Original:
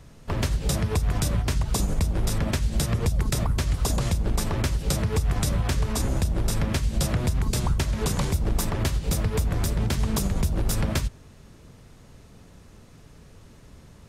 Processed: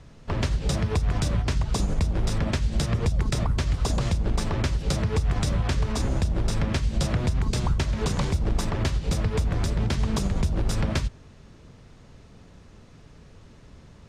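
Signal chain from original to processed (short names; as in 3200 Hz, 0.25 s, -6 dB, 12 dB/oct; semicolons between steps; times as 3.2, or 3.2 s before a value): LPF 6200 Hz 12 dB/oct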